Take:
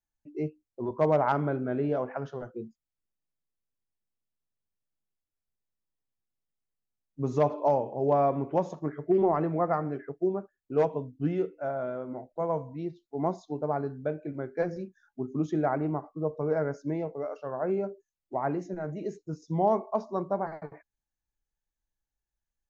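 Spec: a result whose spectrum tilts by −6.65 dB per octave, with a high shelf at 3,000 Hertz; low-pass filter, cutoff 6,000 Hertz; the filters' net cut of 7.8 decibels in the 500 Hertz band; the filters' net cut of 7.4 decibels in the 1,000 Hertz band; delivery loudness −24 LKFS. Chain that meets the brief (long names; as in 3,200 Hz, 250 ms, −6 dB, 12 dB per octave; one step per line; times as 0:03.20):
low-pass filter 6,000 Hz
parametric band 500 Hz −8.5 dB
parametric band 1,000 Hz −5.5 dB
high-shelf EQ 3,000 Hz −8 dB
level +12 dB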